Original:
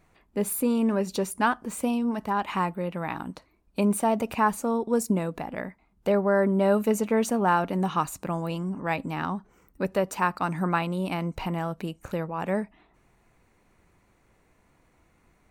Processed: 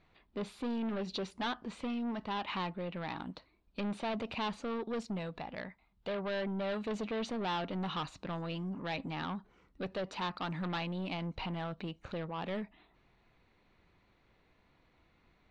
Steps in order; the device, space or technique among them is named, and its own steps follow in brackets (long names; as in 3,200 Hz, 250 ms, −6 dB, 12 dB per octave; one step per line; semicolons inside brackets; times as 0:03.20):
0:05.05–0:06.85: parametric band 310 Hz −6 dB 1.4 octaves
overdriven synthesiser ladder filter (soft clipping −27 dBFS, distortion −8 dB; transistor ladder low-pass 4,500 Hz, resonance 50%)
level +4 dB